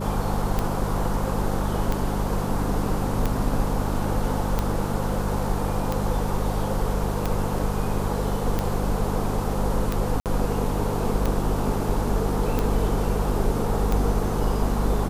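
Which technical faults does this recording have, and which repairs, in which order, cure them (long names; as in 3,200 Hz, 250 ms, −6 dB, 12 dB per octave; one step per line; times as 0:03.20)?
mains hum 50 Hz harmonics 4 −28 dBFS
scratch tick 45 rpm −11 dBFS
0:10.20–0:10.26: drop-out 58 ms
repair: click removal
hum removal 50 Hz, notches 4
repair the gap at 0:10.20, 58 ms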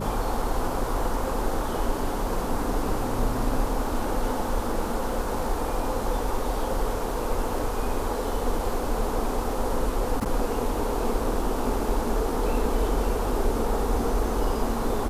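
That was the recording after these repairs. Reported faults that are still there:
none of them is left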